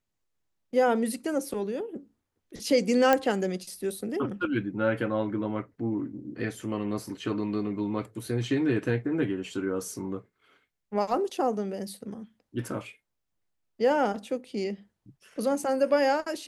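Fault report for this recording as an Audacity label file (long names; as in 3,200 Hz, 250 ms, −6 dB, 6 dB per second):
3.130000	3.130000	click −9 dBFS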